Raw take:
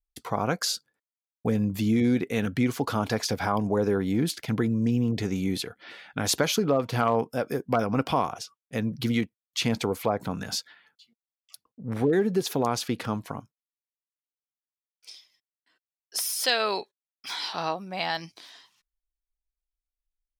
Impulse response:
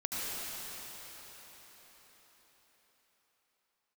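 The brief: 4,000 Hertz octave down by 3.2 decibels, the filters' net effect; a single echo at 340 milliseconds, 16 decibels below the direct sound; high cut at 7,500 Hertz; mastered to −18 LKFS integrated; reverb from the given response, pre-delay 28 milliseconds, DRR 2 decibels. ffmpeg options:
-filter_complex "[0:a]lowpass=7500,equalizer=frequency=4000:width_type=o:gain=-3.5,aecho=1:1:340:0.158,asplit=2[link_01][link_02];[1:a]atrim=start_sample=2205,adelay=28[link_03];[link_02][link_03]afir=irnorm=-1:irlink=0,volume=-8.5dB[link_04];[link_01][link_04]amix=inputs=2:normalize=0,volume=8dB"

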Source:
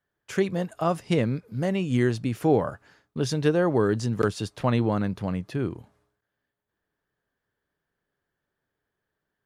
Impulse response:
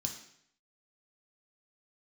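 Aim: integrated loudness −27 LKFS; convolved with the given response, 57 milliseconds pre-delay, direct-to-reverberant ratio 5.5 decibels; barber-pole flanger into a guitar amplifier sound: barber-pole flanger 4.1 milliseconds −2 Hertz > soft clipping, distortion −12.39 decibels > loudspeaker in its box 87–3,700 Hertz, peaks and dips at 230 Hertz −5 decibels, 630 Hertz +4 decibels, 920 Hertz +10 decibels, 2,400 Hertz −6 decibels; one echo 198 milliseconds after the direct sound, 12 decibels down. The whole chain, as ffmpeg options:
-filter_complex "[0:a]aecho=1:1:198:0.251,asplit=2[link_01][link_02];[1:a]atrim=start_sample=2205,adelay=57[link_03];[link_02][link_03]afir=irnorm=-1:irlink=0,volume=-4.5dB[link_04];[link_01][link_04]amix=inputs=2:normalize=0,asplit=2[link_05][link_06];[link_06]adelay=4.1,afreqshift=-2[link_07];[link_05][link_07]amix=inputs=2:normalize=1,asoftclip=threshold=-19dB,highpass=87,equalizer=frequency=230:width_type=q:width=4:gain=-5,equalizer=frequency=630:width_type=q:width=4:gain=4,equalizer=frequency=920:width_type=q:width=4:gain=10,equalizer=frequency=2400:width_type=q:width=4:gain=-6,lowpass=frequency=3700:width=0.5412,lowpass=frequency=3700:width=1.3066,volume=1.5dB"

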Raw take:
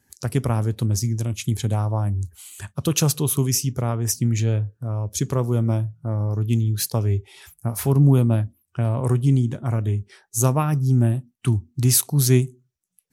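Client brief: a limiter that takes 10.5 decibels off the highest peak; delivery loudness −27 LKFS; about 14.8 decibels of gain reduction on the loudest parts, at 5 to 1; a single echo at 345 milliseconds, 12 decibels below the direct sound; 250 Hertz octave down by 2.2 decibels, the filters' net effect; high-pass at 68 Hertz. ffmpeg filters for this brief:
ffmpeg -i in.wav -af "highpass=68,equalizer=frequency=250:width_type=o:gain=-3,acompressor=threshold=-30dB:ratio=5,alimiter=level_in=3dB:limit=-24dB:level=0:latency=1,volume=-3dB,aecho=1:1:345:0.251,volume=9dB" out.wav

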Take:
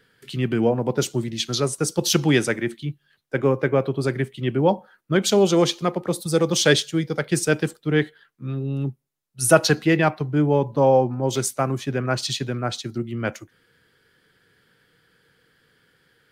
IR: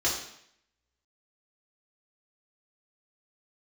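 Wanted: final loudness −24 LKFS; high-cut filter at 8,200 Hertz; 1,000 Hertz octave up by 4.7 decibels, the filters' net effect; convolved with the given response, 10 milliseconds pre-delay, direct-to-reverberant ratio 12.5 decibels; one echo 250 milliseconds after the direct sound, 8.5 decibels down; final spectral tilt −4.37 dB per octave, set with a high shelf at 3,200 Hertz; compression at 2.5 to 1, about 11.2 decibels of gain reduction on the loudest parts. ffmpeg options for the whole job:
-filter_complex "[0:a]lowpass=8200,equalizer=frequency=1000:width_type=o:gain=6,highshelf=frequency=3200:gain=3.5,acompressor=threshold=-23dB:ratio=2.5,aecho=1:1:250:0.376,asplit=2[link_01][link_02];[1:a]atrim=start_sample=2205,adelay=10[link_03];[link_02][link_03]afir=irnorm=-1:irlink=0,volume=-22.5dB[link_04];[link_01][link_04]amix=inputs=2:normalize=0,volume=1.5dB"

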